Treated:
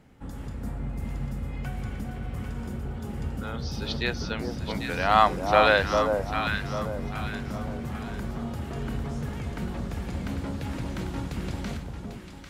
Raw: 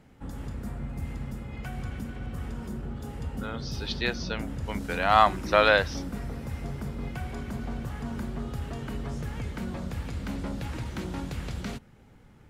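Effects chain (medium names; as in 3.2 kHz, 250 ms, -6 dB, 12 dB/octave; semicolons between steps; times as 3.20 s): echo whose repeats swap between lows and highs 398 ms, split 1 kHz, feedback 60%, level -2.5 dB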